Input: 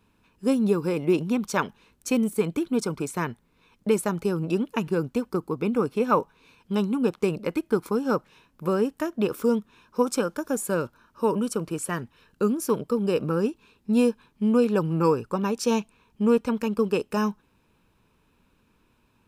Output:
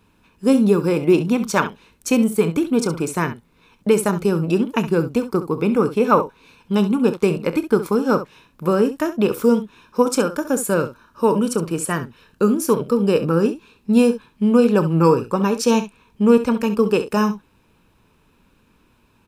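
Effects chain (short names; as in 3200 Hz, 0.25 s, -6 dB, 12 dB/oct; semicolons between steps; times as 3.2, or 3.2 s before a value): early reflections 30 ms -15 dB, 67 ms -12.5 dB; gain +6.5 dB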